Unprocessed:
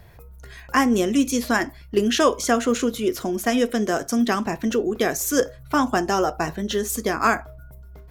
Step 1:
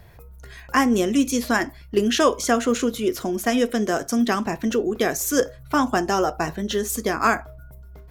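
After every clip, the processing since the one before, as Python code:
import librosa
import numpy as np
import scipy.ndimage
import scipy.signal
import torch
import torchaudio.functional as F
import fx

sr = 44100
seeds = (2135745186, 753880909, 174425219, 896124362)

y = x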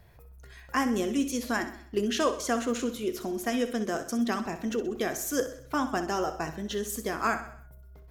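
y = fx.echo_feedback(x, sr, ms=64, feedback_pct=50, wet_db=-11.5)
y = y * 10.0 ** (-8.5 / 20.0)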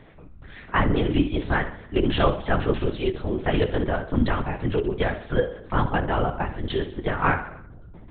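y = fx.lpc_vocoder(x, sr, seeds[0], excitation='whisper', order=8)
y = y * 10.0 ** (6.5 / 20.0)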